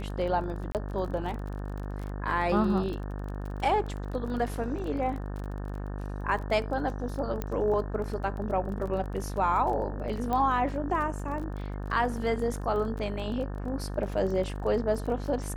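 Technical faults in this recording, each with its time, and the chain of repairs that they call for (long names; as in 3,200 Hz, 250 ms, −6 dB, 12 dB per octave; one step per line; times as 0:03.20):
mains buzz 50 Hz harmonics 36 −35 dBFS
surface crackle 25 per second −36 dBFS
0:00.72–0:00.75: drop-out 28 ms
0:07.42: click −18 dBFS
0:10.33: click −18 dBFS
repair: click removal
hum removal 50 Hz, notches 36
repair the gap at 0:00.72, 28 ms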